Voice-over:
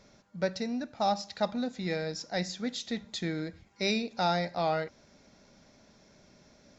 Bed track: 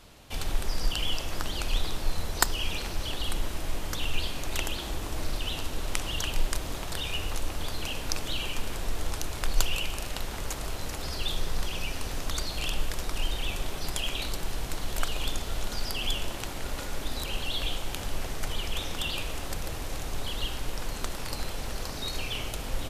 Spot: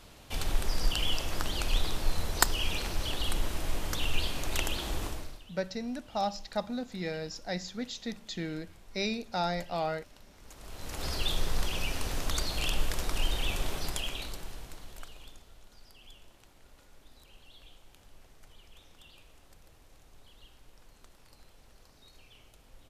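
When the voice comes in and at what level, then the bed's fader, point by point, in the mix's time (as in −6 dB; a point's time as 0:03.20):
5.15 s, −3.0 dB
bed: 0:05.06 −0.5 dB
0:05.48 −23 dB
0:10.35 −23 dB
0:11.05 0 dB
0:13.73 0 dB
0:15.59 −24 dB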